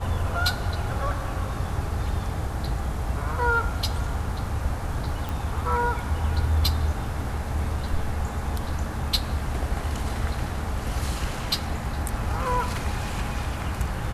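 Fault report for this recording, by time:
5.29 s: pop

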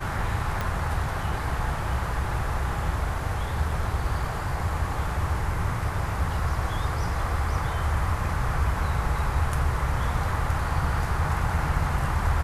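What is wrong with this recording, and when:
0.61 s: pop -14 dBFS

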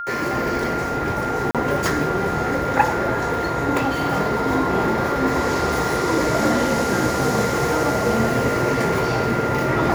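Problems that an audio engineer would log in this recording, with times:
whine 1.4 kHz -26 dBFS
1.51–1.55 s: dropout 37 ms

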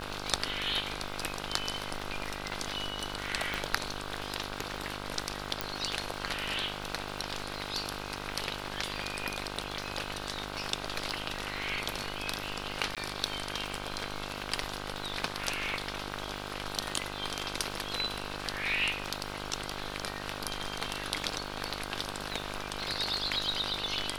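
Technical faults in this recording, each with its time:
buzz 50 Hz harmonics 32 -41 dBFS
crackle 220 per s -41 dBFS
3.54 s: pop
5.61 s: pop -12 dBFS
12.95–12.97 s: dropout 17 ms

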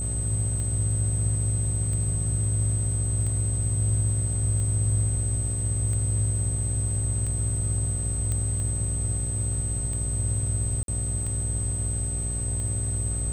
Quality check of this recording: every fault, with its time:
buzz 60 Hz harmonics 12 -31 dBFS
tick 45 rpm -23 dBFS
whine 8.2 kHz -30 dBFS
8.32 s: pop -16 dBFS
10.83–10.88 s: dropout 52 ms

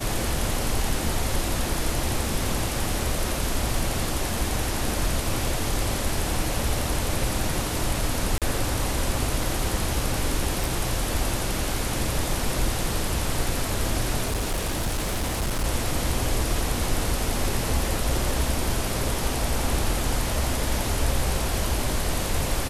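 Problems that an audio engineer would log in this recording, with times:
8.38–8.42 s: dropout 37 ms
10.64 s: pop
14.23–15.65 s: clipped -21.5 dBFS

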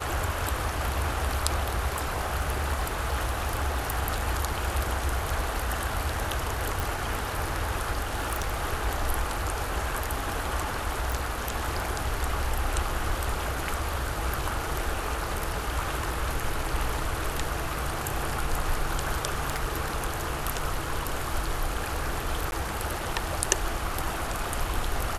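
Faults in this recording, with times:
1.93–4.00 s: clipped -21.5 dBFS
6.80 s: pop
8.13–8.63 s: clipped -23 dBFS
11.12 s: pop
19.28–19.73 s: clipped -21.5 dBFS
22.51–22.52 s: dropout 11 ms

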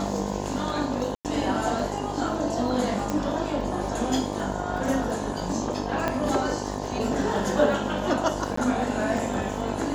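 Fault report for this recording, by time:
buzz 50 Hz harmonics 21 -32 dBFS
crackle 25 per s -35 dBFS
1.15–1.25 s: dropout 98 ms
3.10 s: pop -14 dBFS
6.08 s: pop -11 dBFS
8.56–8.57 s: dropout 14 ms

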